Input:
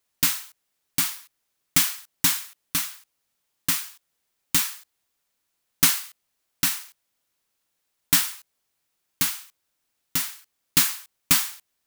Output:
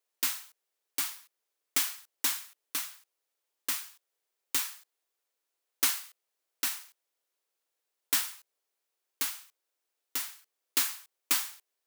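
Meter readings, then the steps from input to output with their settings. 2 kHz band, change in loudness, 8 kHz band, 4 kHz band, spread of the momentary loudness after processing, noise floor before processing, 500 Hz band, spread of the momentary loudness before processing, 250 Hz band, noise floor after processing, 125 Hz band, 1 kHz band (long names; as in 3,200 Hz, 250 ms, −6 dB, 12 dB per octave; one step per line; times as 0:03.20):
−8.0 dB, −8.5 dB, −8.5 dB, −8.0 dB, 13 LU, −77 dBFS, −5.0 dB, 13 LU, −15.0 dB, −85 dBFS, below −25 dB, −7.5 dB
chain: four-pole ladder high-pass 340 Hz, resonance 40%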